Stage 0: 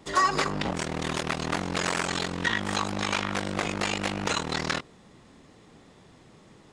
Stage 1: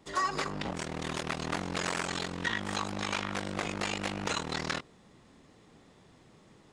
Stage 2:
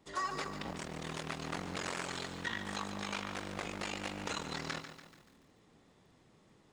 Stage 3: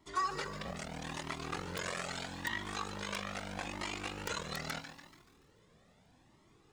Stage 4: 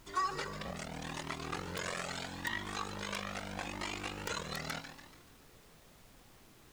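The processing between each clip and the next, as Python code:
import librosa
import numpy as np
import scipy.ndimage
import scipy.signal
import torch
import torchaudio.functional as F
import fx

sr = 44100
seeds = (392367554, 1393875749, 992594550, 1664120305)

y1 = fx.rider(x, sr, range_db=10, speed_s=2.0)
y1 = y1 * 10.0 ** (-5.5 / 20.0)
y2 = fx.echo_crushed(y1, sr, ms=144, feedback_pct=55, bits=9, wet_db=-10)
y2 = y2 * 10.0 ** (-6.5 / 20.0)
y3 = (np.mod(10.0 ** (24.0 / 20.0) * y2 + 1.0, 2.0) - 1.0) / 10.0 ** (24.0 / 20.0)
y3 = fx.comb_cascade(y3, sr, direction='rising', hz=0.78)
y3 = y3 * 10.0 ** (4.5 / 20.0)
y4 = fx.dmg_noise_colour(y3, sr, seeds[0], colour='pink', level_db=-61.0)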